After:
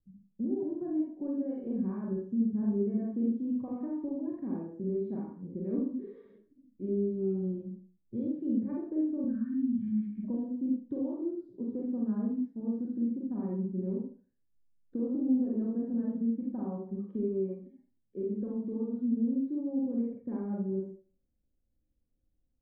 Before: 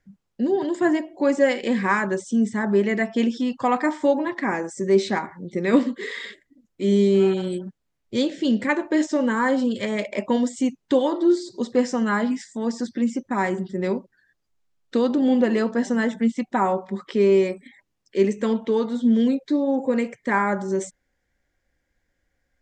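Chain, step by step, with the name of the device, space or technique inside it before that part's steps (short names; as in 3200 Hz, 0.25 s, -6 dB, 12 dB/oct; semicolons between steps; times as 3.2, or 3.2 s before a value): 9.24–10.24 Chebyshev band-stop 250–1500 Hz, order 3; notch 2000 Hz, Q 6.9; television next door (compressor 3:1, threshold -22 dBFS, peak gain reduction 8 dB; LPF 250 Hz 12 dB/oct; reverb RT60 0.40 s, pre-delay 38 ms, DRR -3 dB); gain -6 dB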